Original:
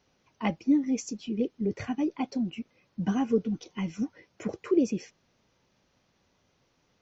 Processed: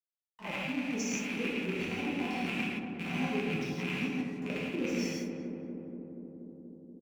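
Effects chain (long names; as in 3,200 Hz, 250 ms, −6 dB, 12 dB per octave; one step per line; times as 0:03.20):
loose part that buzzes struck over −41 dBFS, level −18 dBFS
high-pass filter 42 Hz
low-shelf EQ 110 Hz −9 dB
reversed playback
downward compressor, threshold −39 dBFS, peak gain reduction 19 dB
reversed playback
granular cloud, spray 23 ms, pitch spread up and down by 0 semitones
frequency shifter −19 Hz
dead-zone distortion −58.5 dBFS
double-tracking delay 49 ms −13.5 dB
on a send: feedback echo with a low-pass in the loop 239 ms, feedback 82%, low-pass 1,200 Hz, level −6 dB
on the sum: reverb whose tail is shaped and stops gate 200 ms flat, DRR −6.5 dB
level +3 dB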